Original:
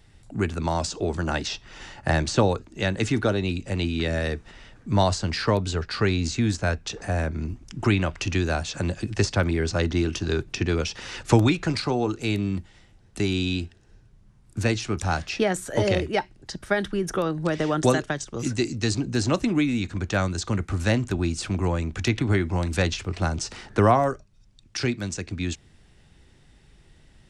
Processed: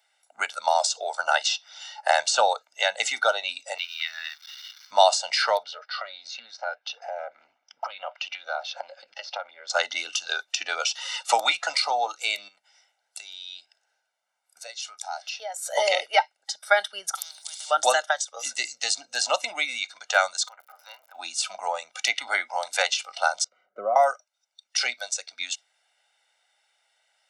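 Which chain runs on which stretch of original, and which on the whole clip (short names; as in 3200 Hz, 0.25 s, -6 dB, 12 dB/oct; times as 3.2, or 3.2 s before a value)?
3.78–4.91 switching spikes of -24 dBFS + steep high-pass 1000 Hz + air absorption 210 m
5.63–9.7 compressor 12:1, threshold -25 dBFS + air absorption 210 m + Doppler distortion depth 0.33 ms
12.48–15.63 compressor 2.5:1, threshold -37 dBFS + notch 1200 Hz, Q 22
17.15–17.71 resonant high shelf 2200 Hz +6.5 dB, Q 3 + spectral compressor 10:1
20.47–21.14 band-pass 460 Hz, Q 2.5 + crackle 60/s -49 dBFS + spectral compressor 10:1
23.44–23.96 running mean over 51 samples + tilt -2 dB/oct + comb 5.4 ms, depth 39%
whole clip: spectral noise reduction 12 dB; HPF 670 Hz 24 dB/oct; comb 1.4 ms, depth 74%; gain +4.5 dB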